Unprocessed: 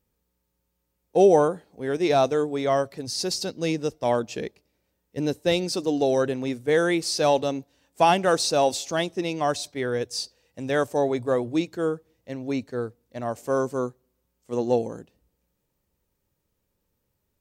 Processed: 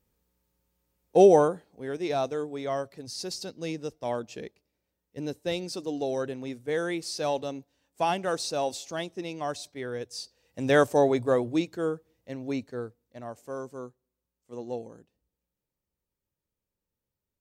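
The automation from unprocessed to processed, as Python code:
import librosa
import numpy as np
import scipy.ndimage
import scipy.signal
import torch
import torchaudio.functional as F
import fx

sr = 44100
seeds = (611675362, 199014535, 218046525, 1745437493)

y = fx.gain(x, sr, db=fx.line((1.2, 0.5), (2.01, -8.0), (10.23, -8.0), (10.69, 3.5), (11.81, -3.5), (12.52, -3.5), (13.55, -12.5)))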